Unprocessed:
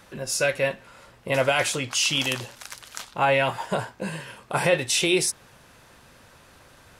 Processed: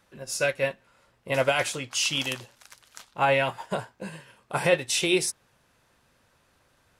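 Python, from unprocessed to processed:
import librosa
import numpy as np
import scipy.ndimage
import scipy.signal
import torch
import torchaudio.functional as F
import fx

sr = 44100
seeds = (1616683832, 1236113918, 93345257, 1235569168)

y = fx.upward_expand(x, sr, threshold_db=-42.0, expansion=1.5)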